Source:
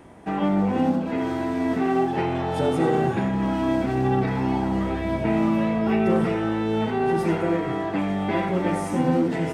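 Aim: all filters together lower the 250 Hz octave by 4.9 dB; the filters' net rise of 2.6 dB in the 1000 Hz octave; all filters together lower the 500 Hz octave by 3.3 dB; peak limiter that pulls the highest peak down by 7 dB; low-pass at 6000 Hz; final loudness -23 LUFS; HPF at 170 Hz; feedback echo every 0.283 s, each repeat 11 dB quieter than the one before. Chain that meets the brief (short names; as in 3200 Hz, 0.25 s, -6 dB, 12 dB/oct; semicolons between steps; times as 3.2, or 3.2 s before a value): HPF 170 Hz; LPF 6000 Hz; bell 250 Hz -4 dB; bell 500 Hz -4.5 dB; bell 1000 Hz +5.5 dB; limiter -18 dBFS; feedback echo 0.283 s, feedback 28%, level -11 dB; gain +4 dB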